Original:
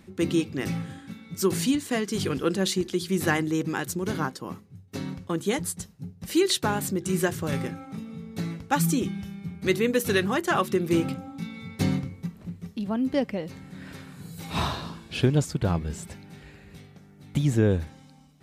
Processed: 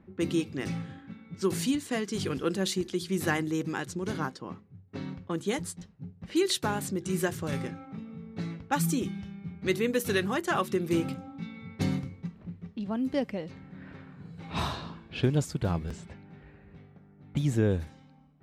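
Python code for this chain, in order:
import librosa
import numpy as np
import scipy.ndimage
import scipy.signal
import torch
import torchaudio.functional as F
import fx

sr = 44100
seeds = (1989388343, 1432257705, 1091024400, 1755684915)

y = fx.env_lowpass(x, sr, base_hz=1400.0, full_db=-22.5)
y = fx.buffer_glitch(y, sr, at_s=(5.78, 15.87), block=512, repeats=2)
y = F.gain(torch.from_numpy(y), -4.0).numpy()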